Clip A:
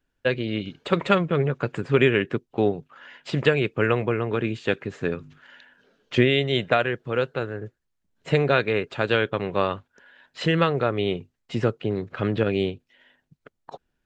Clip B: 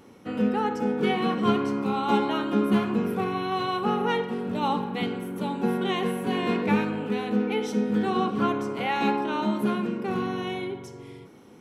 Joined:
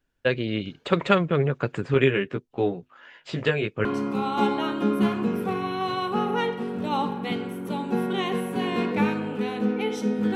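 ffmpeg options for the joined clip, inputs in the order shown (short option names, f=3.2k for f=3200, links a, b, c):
-filter_complex "[0:a]asettb=1/sr,asplit=3[a][b][c];[a]atrim=end=1.944[d];[b]atrim=start=1.94:end=3.85,asetpts=PTS-STARTPTS,afade=t=in:d=0.004:c=qsin,afade=t=out:st=1.906:d=0.004:c=qsin,flanger=delay=15:depth=4.5:speed=0.23[e];[c]atrim=start=3.846[f];[d][e]acrossfade=d=0.004:c1=hsin:c2=qsin[g];[g][f]acrossfade=d=0.004:c1=qsin:c2=hsin,apad=whole_dur=10.35,atrim=end=10.35,atrim=end=3.852[h];[1:a]atrim=start=1.558:end=8.06[i];[h][i]acrossfade=d=0.004:c1=hsin:c2=hsin"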